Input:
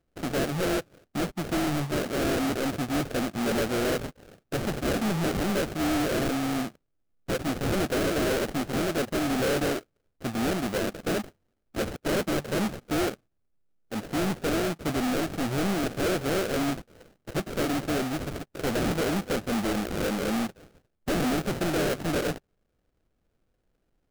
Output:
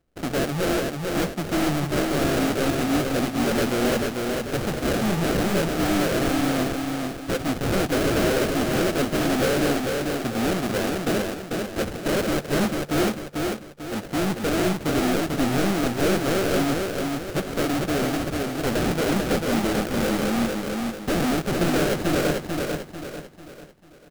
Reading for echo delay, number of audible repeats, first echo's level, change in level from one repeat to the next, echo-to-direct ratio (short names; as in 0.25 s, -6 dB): 0.444 s, 4, -3.5 dB, -8.0 dB, -2.5 dB